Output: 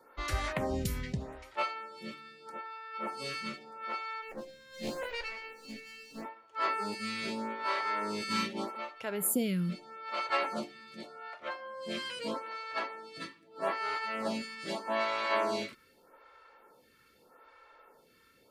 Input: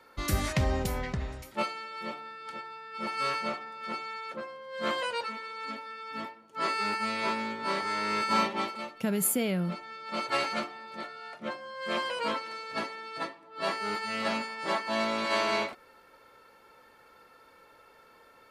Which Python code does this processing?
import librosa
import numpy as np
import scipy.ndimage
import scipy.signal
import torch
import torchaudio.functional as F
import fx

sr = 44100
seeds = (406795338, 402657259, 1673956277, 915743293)

y = fx.lower_of_two(x, sr, delay_ms=0.44, at=(4.21, 6.23), fade=0.02)
y = fx.stagger_phaser(y, sr, hz=0.81)